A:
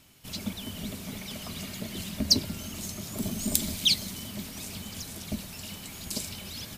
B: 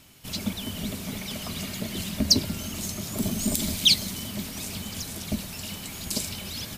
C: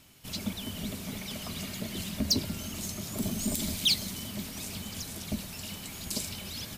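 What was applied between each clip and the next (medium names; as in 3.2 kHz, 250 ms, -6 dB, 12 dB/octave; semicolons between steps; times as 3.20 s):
loudness maximiser +9.5 dB; trim -5 dB
saturation -13.5 dBFS, distortion -15 dB; trim -4 dB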